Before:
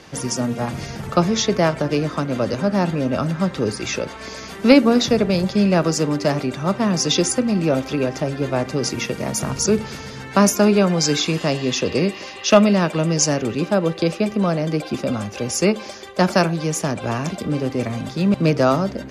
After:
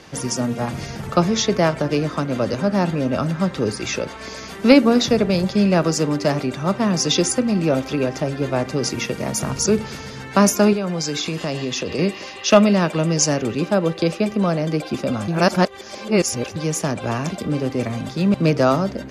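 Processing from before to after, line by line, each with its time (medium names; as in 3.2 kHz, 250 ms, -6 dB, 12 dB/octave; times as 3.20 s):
10.73–11.99 s: compression, threshold -20 dBFS
15.28–16.56 s: reverse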